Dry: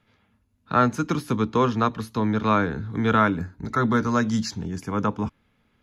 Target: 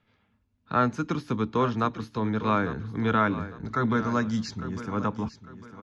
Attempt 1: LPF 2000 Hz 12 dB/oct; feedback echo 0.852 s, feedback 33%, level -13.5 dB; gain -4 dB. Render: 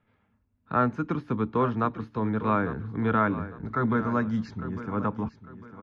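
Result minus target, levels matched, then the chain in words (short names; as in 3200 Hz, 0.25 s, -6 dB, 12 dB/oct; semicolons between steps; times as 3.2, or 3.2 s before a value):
4000 Hz band -10.0 dB
LPF 5600 Hz 12 dB/oct; feedback echo 0.852 s, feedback 33%, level -13.5 dB; gain -4 dB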